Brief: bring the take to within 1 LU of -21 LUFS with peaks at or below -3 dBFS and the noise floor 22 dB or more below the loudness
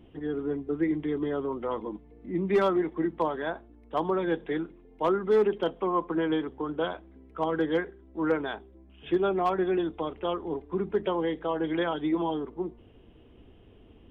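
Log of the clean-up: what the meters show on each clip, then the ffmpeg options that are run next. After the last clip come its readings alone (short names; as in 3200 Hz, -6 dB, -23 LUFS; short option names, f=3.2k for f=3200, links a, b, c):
loudness -29.5 LUFS; peak -16.5 dBFS; loudness target -21.0 LUFS
-> -af "volume=8.5dB"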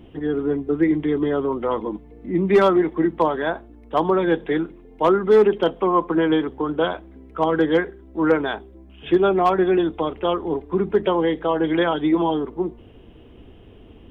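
loudness -21.0 LUFS; peak -8.0 dBFS; noise floor -46 dBFS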